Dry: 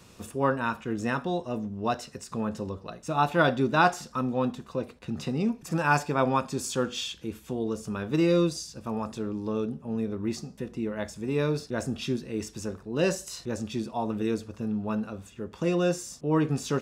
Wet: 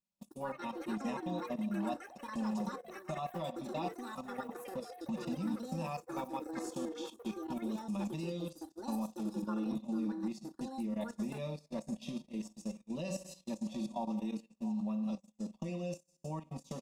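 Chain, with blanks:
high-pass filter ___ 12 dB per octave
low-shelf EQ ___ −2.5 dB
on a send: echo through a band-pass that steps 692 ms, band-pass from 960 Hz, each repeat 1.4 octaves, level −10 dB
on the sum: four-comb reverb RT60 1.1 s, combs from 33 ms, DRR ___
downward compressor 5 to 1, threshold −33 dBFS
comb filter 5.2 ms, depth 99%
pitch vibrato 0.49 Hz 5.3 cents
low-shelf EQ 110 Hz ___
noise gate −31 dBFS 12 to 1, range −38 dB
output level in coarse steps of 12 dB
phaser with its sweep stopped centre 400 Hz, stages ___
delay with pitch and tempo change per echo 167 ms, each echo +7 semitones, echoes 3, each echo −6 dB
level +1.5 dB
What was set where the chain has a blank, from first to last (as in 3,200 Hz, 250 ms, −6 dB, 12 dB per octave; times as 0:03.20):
53 Hz, 240 Hz, 7 dB, +10 dB, 6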